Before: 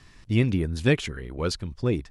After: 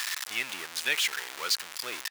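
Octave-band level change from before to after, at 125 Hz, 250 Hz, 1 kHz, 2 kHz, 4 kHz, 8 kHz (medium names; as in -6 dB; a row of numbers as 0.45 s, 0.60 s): under -35 dB, -26.0 dB, +1.0 dB, +3.0 dB, +7.0 dB, +9.0 dB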